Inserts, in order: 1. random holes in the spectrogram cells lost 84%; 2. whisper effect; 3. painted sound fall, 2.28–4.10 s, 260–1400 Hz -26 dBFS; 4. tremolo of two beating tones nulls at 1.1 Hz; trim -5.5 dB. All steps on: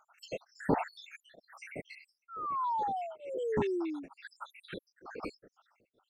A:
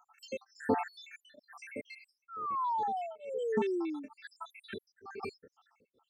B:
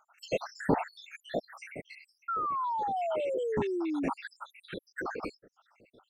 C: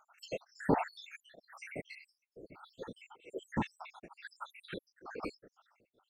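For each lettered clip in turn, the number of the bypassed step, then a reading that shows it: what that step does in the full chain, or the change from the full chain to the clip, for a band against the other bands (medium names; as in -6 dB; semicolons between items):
2, 125 Hz band -8.5 dB; 4, momentary loudness spread change -4 LU; 3, 1 kHz band -7.0 dB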